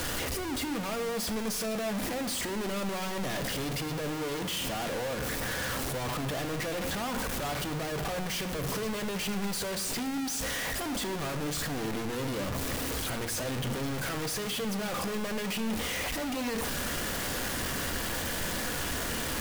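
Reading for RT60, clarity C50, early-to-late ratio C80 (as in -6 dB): 1.3 s, 11.0 dB, 12.5 dB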